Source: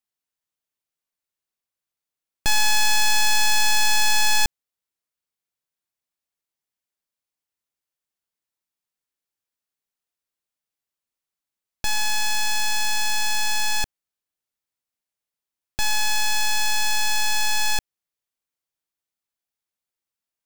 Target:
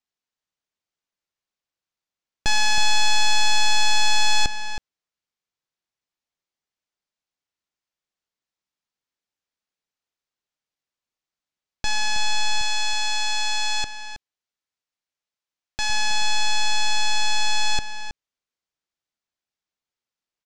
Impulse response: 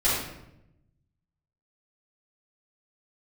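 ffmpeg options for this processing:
-filter_complex "[0:a]lowpass=frequency=6900:width=0.5412,lowpass=frequency=6900:width=1.3066,acontrast=89,asettb=1/sr,asplit=3[link_01][link_02][link_03];[link_01]atrim=end=12.614[link_04];[link_02]atrim=start=12.61:end=15.9,asetpts=PTS-STARTPTS,afade=type=in:duration=0.004:curve=qsin,afade=type=out:start_time=3.286:duration=0.004:curve=qsin,lowshelf=frequency=470:gain=-5.5[link_05];[link_03]atrim=start=15.896[link_06];[link_04][link_05]acrossfade=duration=0.004:curve1=hsin:curve2=qsin[link_07];[link_07][link_06]acrossfade=duration=0.004:curve1=qsin:curve2=hsin,asplit=2[link_08][link_09];[link_09]adelay=320.7,volume=-9dB,highshelf=frequency=4000:gain=-7.22[link_10];[link_08][link_10]amix=inputs=2:normalize=0,volume=-6.5dB"

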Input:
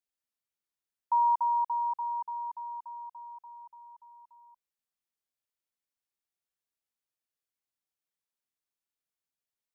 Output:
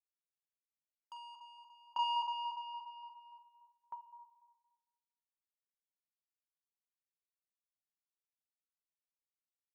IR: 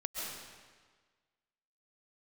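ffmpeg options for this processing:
-filter_complex "[0:a]agate=range=-33dB:threshold=-42dB:ratio=3:detection=peak,highpass=frequency=750:width=0.5412,highpass=frequency=750:width=1.3066,equalizer=frequency=980:width=1.5:gain=8,acompressor=threshold=-40dB:ratio=2.5,asoftclip=type=tanh:threshold=-39dB,asplit=2[link_01][link_02];[link_02]adelay=45,volume=-7dB[link_03];[link_01][link_03]amix=inputs=2:normalize=0,asplit=2[link_04][link_05];[link_05]adelay=226,lowpass=frequency=1000:poles=1,volume=-3dB,asplit=2[link_06][link_07];[link_07]adelay=226,lowpass=frequency=1000:poles=1,volume=0.52,asplit=2[link_08][link_09];[link_09]adelay=226,lowpass=frequency=1000:poles=1,volume=0.52,asplit=2[link_10][link_11];[link_11]adelay=226,lowpass=frequency=1000:poles=1,volume=0.52,asplit=2[link_12][link_13];[link_13]adelay=226,lowpass=frequency=1000:poles=1,volume=0.52,asplit=2[link_14][link_15];[link_15]adelay=226,lowpass=frequency=1000:poles=1,volume=0.52,asplit=2[link_16][link_17];[link_17]adelay=226,lowpass=frequency=1000:poles=1,volume=0.52[link_18];[link_06][link_08][link_10][link_12][link_14][link_16][link_18]amix=inputs=7:normalize=0[link_19];[link_04][link_19]amix=inputs=2:normalize=0,aeval=exprs='val(0)*pow(10,-33*if(lt(mod(0.51*n/s,1),2*abs(0.51)/1000),1-mod(0.51*n/s,1)/(2*abs(0.51)/1000),(mod(0.51*n/s,1)-2*abs(0.51)/1000)/(1-2*abs(0.51)/1000))/20)':channel_layout=same,volume=11.5dB"

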